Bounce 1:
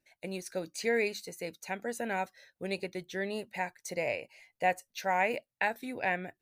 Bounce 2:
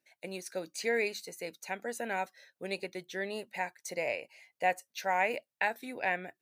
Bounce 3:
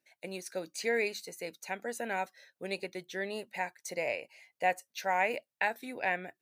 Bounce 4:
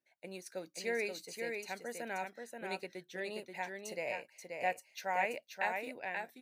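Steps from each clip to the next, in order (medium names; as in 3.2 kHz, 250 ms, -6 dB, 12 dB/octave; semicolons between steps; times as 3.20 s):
high-pass 110 Hz; bass shelf 210 Hz -9 dB
no audible change
fade out at the end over 0.56 s; delay 531 ms -4.5 dB; tape noise reduction on one side only decoder only; trim -5.5 dB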